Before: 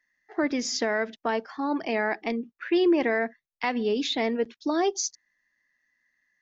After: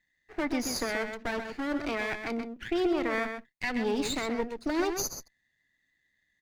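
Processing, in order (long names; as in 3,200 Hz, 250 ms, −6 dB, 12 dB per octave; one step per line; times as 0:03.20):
lower of the sound and its delayed copy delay 0.46 ms
brickwall limiter −18.5 dBFS, peak gain reduction 5 dB
slap from a distant wall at 22 metres, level −7 dB
level −2 dB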